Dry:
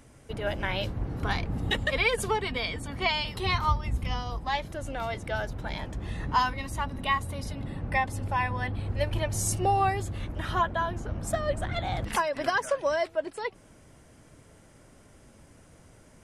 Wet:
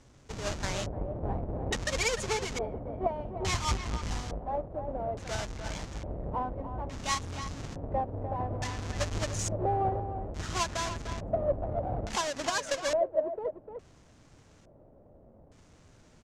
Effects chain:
each half-wave held at its own peak
far-end echo of a speakerphone 300 ms, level −7 dB
auto-filter low-pass square 0.58 Hz 620–6,600 Hz
level −9 dB

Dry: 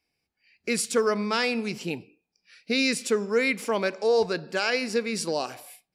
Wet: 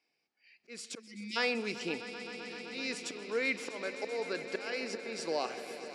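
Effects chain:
volume swells 500 ms
in parallel at −1.5 dB: downward compressor, threshold −37 dBFS, peak gain reduction 14.5 dB
on the sum: high-pass filter 290 Hz 12 dB per octave
high-shelf EQ 6,400 Hz +8 dB
time-frequency box erased 0:00.99–0:01.36, 370–1,900 Hz
high-frequency loss of the air 110 metres
echo that builds up and dies away 129 ms, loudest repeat 5, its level −16 dB
level −5 dB

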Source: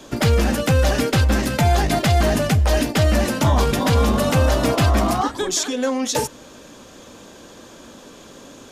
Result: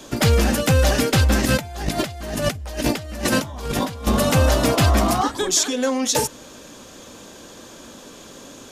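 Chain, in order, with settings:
high-shelf EQ 4,100 Hz +5 dB
0:01.44–0:04.07: compressor whose output falls as the input rises −23 dBFS, ratio −0.5

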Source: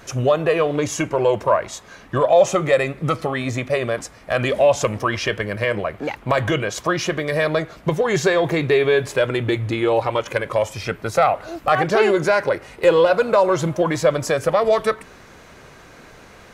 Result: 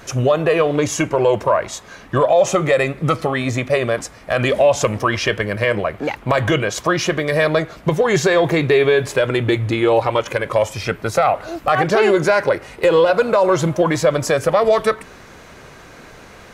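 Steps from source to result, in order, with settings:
brickwall limiter −9 dBFS, peak gain reduction 6 dB
level +3.5 dB

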